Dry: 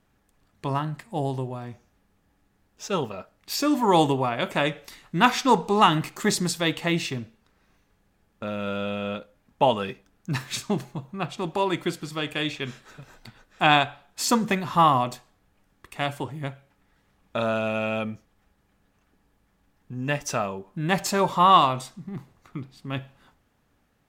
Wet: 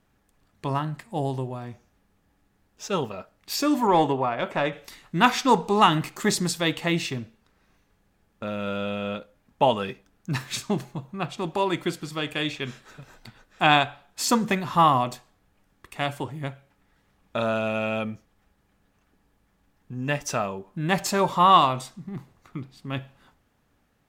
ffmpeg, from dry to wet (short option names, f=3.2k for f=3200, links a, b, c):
-filter_complex "[0:a]asettb=1/sr,asplit=3[a][b][c];[a]atrim=end=3.874[d];[b]atrim=start=3.87:end=4.73,asetpts=PTS-STARTPTS,afade=t=in:d=0.004:c=qsin,afade=t=out:st=0.856:d=0.004:c=qsin,asplit=2[e][f];[f]highpass=f=720:p=1,volume=9dB,asoftclip=type=tanh:threshold=-7.5dB[g];[e][g]amix=inputs=2:normalize=0,lowpass=f=1.1k:p=1,volume=-6dB[h];[c]atrim=start=4.726[i];[d][h]acrossfade=d=0.004:c1=hsin:c2=qsin[j];[j][i]acrossfade=d=0.004:c1=qsin:c2=hsin"